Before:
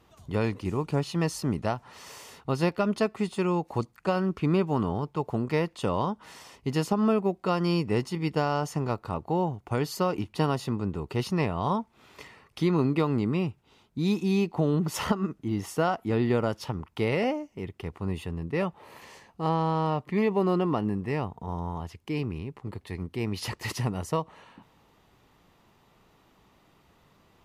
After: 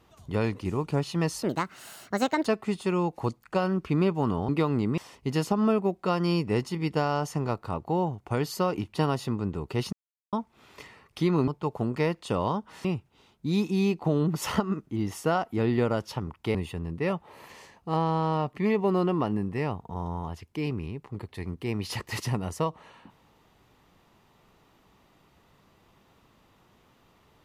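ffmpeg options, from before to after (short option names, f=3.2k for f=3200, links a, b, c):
-filter_complex "[0:a]asplit=10[a][b][c][d][e][f][g][h][i][j];[a]atrim=end=1.434[k];[b]atrim=start=1.43:end=2.98,asetpts=PTS-STARTPTS,asetrate=66591,aresample=44100,atrim=end_sample=45268,asetpts=PTS-STARTPTS[l];[c]atrim=start=2.976:end=5.012[m];[d]atrim=start=12.878:end=13.372[n];[e]atrim=start=6.378:end=11.33,asetpts=PTS-STARTPTS,afade=t=out:st=4.948:d=0.004:c=hsin[o];[f]atrim=start=11.33:end=11.73,asetpts=PTS-STARTPTS,volume=0[p];[g]atrim=start=11.73:end=12.882,asetpts=PTS-STARTPTS,afade=t=in:d=0.004:c=hsin[q];[h]atrim=start=5.008:end=6.382[r];[i]atrim=start=13.368:end=17.072[s];[j]atrim=start=18.068[t];[k][l]acrossfade=d=0.004:c1=hsin:c2=hsin[u];[u][m]acrossfade=d=0.004:c1=hsin:c2=hsin[v];[v][n]acrossfade=d=0.004:c1=hsin:c2=hsin[w];[o][p][q]concat=n=3:v=0:a=1[x];[w][x]acrossfade=d=0.004:c1=hsin:c2=hsin[y];[y][r]acrossfade=d=0.004:c1=hsin:c2=hsin[z];[z][s]acrossfade=d=0.004:c1=hsin:c2=hsin[aa];[aa][t]acrossfade=d=0.004:c1=hsin:c2=hsin"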